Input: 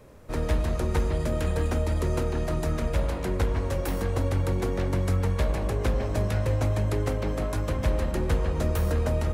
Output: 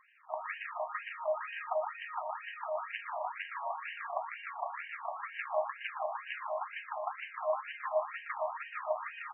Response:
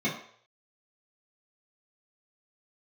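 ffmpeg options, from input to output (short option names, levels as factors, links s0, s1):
-af "equalizer=f=1500:t=o:w=2.1:g=-6.5,bandreject=f=1500:w=8.4,aecho=1:1:119:0.562,afftfilt=real='re*between(b*sr/1024,830*pow(2200/830,0.5+0.5*sin(2*PI*2.1*pts/sr))/1.41,830*pow(2200/830,0.5+0.5*sin(2*PI*2.1*pts/sr))*1.41)':imag='im*between(b*sr/1024,830*pow(2200/830,0.5+0.5*sin(2*PI*2.1*pts/sr))/1.41,830*pow(2200/830,0.5+0.5*sin(2*PI*2.1*pts/sr))*1.41)':win_size=1024:overlap=0.75,volume=2.51"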